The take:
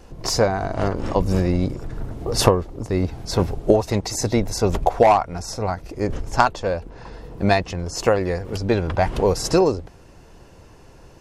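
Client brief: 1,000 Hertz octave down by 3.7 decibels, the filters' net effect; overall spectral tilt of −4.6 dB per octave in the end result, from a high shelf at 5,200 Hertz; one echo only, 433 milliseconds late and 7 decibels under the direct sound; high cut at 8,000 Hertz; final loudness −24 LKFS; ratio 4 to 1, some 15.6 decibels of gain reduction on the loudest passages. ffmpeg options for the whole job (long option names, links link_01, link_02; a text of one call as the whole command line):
ffmpeg -i in.wav -af "lowpass=8000,equalizer=frequency=1000:width_type=o:gain=-5.5,highshelf=frequency=5200:gain=4.5,acompressor=threshold=-30dB:ratio=4,aecho=1:1:433:0.447,volume=8.5dB" out.wav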